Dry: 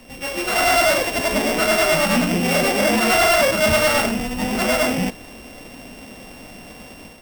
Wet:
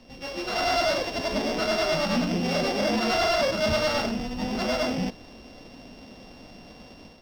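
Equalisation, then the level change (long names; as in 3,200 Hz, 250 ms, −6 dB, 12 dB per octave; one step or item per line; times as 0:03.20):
high-frequency loss of the air 290 metres
high shelf with overshoot 3,500 Hz +12.5 dB, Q 1.5
−5.5 dB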